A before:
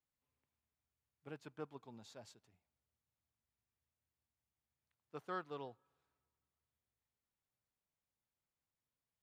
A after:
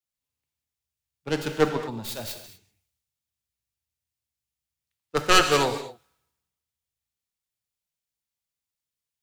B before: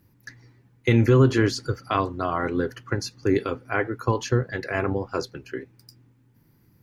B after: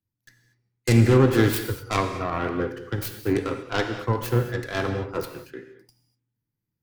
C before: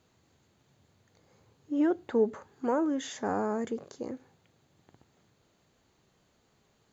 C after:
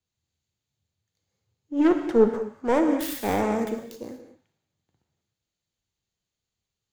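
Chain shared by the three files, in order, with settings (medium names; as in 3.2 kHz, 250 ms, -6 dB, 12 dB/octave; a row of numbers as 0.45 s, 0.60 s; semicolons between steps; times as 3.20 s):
tracing distortion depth 0.28 ms; in parallel at -7.5 dB: hard clipper -24 dBFS; on the sum: gated-style reverb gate 270 ms flat, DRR 4.5 dB; three bands expanded up and down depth 70%; normalise loudness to -24 LUFS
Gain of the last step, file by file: +19.5 dB, -4.0 dB, 0.0 dB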